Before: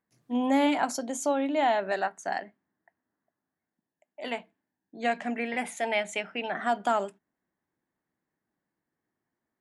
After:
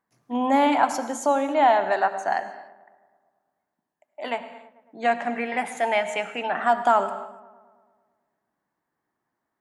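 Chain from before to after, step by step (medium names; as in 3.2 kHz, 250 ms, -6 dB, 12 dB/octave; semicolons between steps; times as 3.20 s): peaking EQ 1 kHz +9.5 dB 1.5 oct; filtered feedback delay 110 ms, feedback 66%, low-pass 2.7 kHz, level -18 dB; on a send at -12 dB: reverberation, pre-delay 58 ms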